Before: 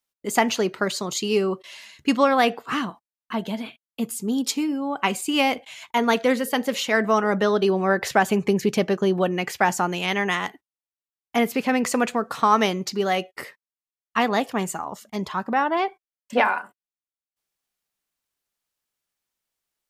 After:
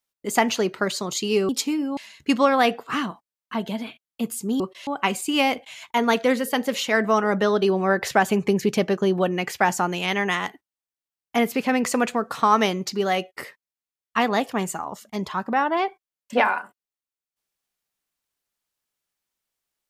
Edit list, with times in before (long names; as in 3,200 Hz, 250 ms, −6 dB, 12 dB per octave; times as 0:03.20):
0:01.49–0:01.76: swap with 0:04.39–0:04.87